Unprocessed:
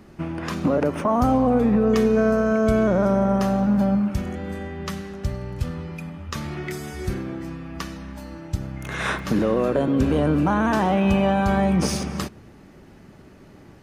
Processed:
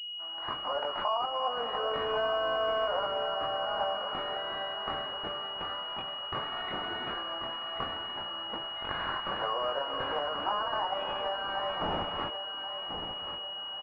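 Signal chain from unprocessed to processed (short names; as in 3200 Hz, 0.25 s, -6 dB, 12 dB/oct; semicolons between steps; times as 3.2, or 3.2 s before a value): opening faded in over 1.25 s; HPF 800 Hz 24 dB/oct; limiter -23.5 dBFS, peak gain reduction 9.5 dB; compressor, threshold -35 dBFS, peak gain reduction 7.5 dB; doubler 21 ms -3 dB; feedback echo 1.087 s, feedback 45%, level -9 dB; pulse-width modulation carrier 2900 Hz; gain +7 dB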